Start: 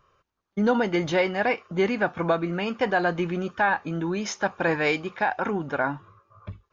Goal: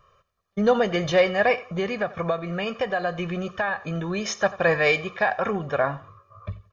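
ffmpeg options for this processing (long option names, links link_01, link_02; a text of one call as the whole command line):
ffmpeg -i in.wav -filter_complex "[0:a]aecho=1:1:1.7:0.68,asettb=1/sr,asplit=3[link_01][link_02][link_03];[link_01]atrim=end=1.614[link_04];[link_02]atrim=start=1.61:end=3.81,asetpts=PTS-STARTPTS,afade=type=in:duration=0.004:curve=qsin,afade=type=out:start_time=2.196:duration=0.004:curve=qsin,acompressor=threshold=-26dB:ratio=2.5[link_05];[link_03]atrim=start=3.806[link_06];[link_04][link_05]acrossfade=duration=0.004:curve1=hsin:curve2=qsin[link_07];[link_07][link_06]acrossfade=duration=0.004:curve1=qsin:curve2=hsin,aecho=1:1:89|178:0.112|0.0292,volume=1.5dB" out.wav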